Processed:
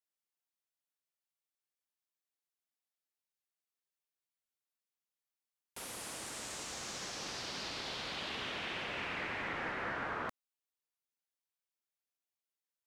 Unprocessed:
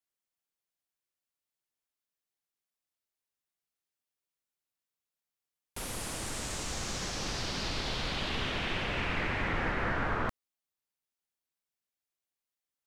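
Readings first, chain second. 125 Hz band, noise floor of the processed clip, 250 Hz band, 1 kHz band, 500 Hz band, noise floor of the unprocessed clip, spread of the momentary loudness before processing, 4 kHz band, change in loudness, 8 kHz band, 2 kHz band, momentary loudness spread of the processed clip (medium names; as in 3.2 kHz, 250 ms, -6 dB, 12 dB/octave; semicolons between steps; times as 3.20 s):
-15.0 dB, under -85 dBFS, -9.5 dB, -5.5 dB, -6.5 dB, under -85 dBFS, 5 LU, -5.0 dB, -6.0 dB, -5.0 dB, -5.0 dB, 5 LU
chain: high-pass 340 Hz 6 dB/octave; trim -5 dB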